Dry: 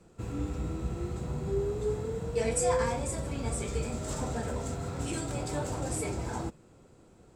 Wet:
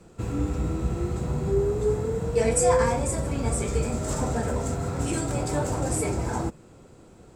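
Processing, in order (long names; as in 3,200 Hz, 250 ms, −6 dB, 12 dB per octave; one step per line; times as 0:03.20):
dynamic equaliser 3,500 Hz, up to −5 dB, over −56 dBFS, Q 1.2
level +7 dB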